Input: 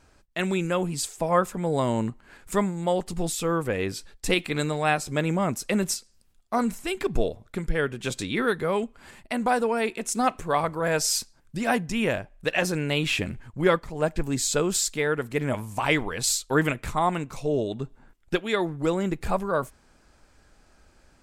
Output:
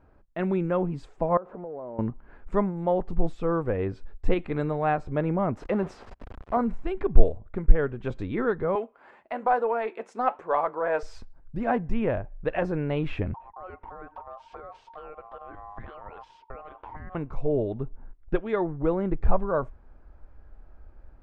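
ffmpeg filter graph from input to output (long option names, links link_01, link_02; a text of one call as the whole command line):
ffmpeg -i in.wav -filter_complex "[0:a]asettb=1/sr,asplit=3[link_01][link_02][link_03];[link_01]atrim=end=1.374[link_04];[link_02]atrim=start=1.37:end=1.99,asetpts=PTS-STARTPTS,afade=type=in:duration=0.004:curve=qsin,afade=type=out:start_time=0.616:duration=0.004:curve=qsin,aeval=exprs='val(0)+0.5*0.0237*sgn(val(0))':channel_layout=same,bandpass=frequency=570:width_type=q:width=1.3,acompressor=threshold=-33dB:ratio=12:attack=3.2:release=140:knee=1:detection=peak[link_05];[link_03]atrim=start=1.986[link_06];[link_04][link_05]acrossfade=duration=0.004:curve1=hsin:curve2=qsin[link_07];[link_07][link_06]acrossfade=duration=0.004:curve1=qsin:curve2=hsin,asettb=1/sr,asplit=3[link_08][link_09][link_10];[link_08]atrim=end=5.574[link_11];[link_09]atrim=start=5.57:end=6.57,asetpts=PTS-STARTPTS,afade=type=in:duration=0.004:curve=qsin,afade=type=out:start_time=0.996:duration=0.004:curve=qsin,aeval=exprs='val(0)+0.5*0.0398*sgn(val(0))':channel_layout=same,highpass=frequency=98:poles=1,bass=frequency=250:gain=-4,treble=frequency=4000:gain=-2[link_12];[link_10]atrim=start=6.566[link_13];[link_11][link_12]acrossfade=duration=0.004:curve1=hsin:curve2=qsin[link_14];[link_14][link_13]acrossfade=duration=0.004:curve1=qsin:curve2=hsin,asettb=1/sr,asplit=3[link_15][link_16][link_17];[link_15]atrim=end=8.754[link_18];[link_16]atrim=start=8.75:end=11.03,asetpts=PTS-STARTPTS,afade=type=in:duration=0.004:curve=qsin,afade=type=out:start_time=2.276:duration=0.004:curve=qsin,highpass=490,acontrast=73,flanger=delay=4.8:depth=2.9:regen=-78:speed=1.1:shape=sinusoidal[link_19];[link_17]atrim=start=11.026[link_20];[link_18][link_19]acrossfade=duration=0.004:curve1=hsin:curve2=qsin[link_21];[link_21][link_20]acrossfade=duration=0.004:curve1=qsin:curve2=hsin,asettb=1/sr,asplit=3[link_22][link_23][link_24];[link_22]atrim=end=13.344[link_25];[link_23]atrim=start=13.34:end=17.15,asetpts=PTS-STARTPTS,afade=type=in:duration=0.004:curve=qsin,afade=type=out:start_time=3.806:duration=0.004:curve=qsin,lowpass=3700,acompressor=threshold=-33dB:ratio=20:attack=3.2:release=140:knee=1:detection=peak,aeval=exprs='val(0)*sin(2*PI*920*n/s)':channel_layout=same[link_26];[link_24]atrim=start=17.146[link_27];[link_25][link_26]acrossfade=duration=0.004:curve1=hsin:curve2=qsin[link_28];[link_28][link_27]acrossfade=duration=0.004:curve1=qsin:curve2=hsin,asubboost=boost=4:cutoff=76,lowpass=1100,volume=1dB" out.wav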